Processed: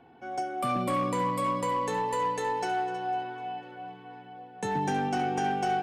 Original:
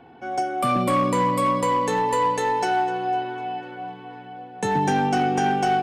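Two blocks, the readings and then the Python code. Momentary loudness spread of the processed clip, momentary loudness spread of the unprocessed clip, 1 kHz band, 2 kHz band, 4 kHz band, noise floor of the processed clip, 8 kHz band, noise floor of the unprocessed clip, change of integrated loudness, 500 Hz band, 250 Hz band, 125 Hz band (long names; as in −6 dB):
15 LU, 15 LU, −7.0 dB, −7.5 dB, −7.5 dB, −50 dBFS, −7.5 dB, −42 dBFS, −7.5 dB, −7.5 dB, −8.0 dB, −7.5 dB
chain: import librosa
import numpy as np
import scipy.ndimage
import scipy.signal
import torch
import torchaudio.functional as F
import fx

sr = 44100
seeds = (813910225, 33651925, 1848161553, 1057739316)

y = x + 10.0 ** (-15.0 / 20.0) * np.pad(x, (int(318 * sr / 1000.0), 0))[:len(x)]
y = F.gain(torch.from_numpy(y), -7.5).numpy()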